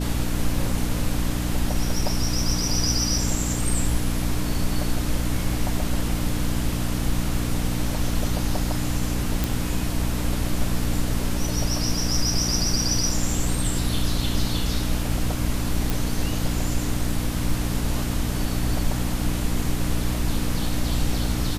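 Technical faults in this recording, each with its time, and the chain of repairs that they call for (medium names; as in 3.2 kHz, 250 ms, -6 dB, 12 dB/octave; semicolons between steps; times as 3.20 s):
hum 60 Hz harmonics 5 -27 dBFS
9.44 s: pop
15.90 s: pop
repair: de-click; de-hum 60 Hz, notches 5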